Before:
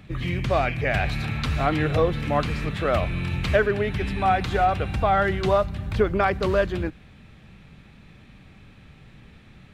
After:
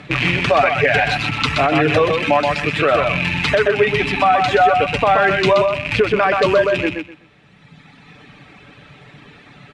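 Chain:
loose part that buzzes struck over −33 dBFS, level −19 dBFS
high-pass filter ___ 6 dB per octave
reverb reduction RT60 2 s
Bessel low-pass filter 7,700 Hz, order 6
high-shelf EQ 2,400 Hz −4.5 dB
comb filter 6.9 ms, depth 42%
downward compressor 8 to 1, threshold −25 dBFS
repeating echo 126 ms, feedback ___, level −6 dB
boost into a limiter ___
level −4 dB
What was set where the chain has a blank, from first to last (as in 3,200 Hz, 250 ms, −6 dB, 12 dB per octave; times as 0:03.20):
460 Hz, 21%, +20 dB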